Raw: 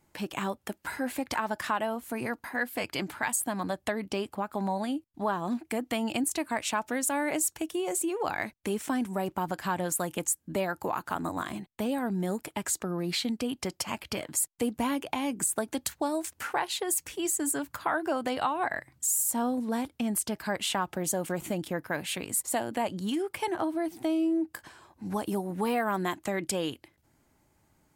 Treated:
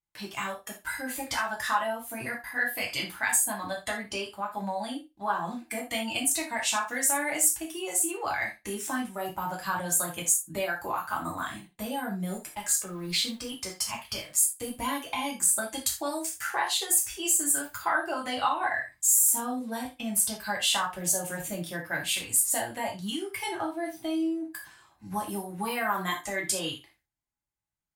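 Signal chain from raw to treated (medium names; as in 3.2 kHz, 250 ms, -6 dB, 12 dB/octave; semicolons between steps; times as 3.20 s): 12.30–14.72 s: companding laws mixed up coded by A; spectral noise reduction 7 dB; gate with hold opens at -56 dBFS; peaking EQ 340 Hz -13 dB 2 oct; flutter echo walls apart 10.1 m, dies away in 0.21 s; gated-style reverb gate 110 ms falling, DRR -2.5 dB; trim +1.5 dB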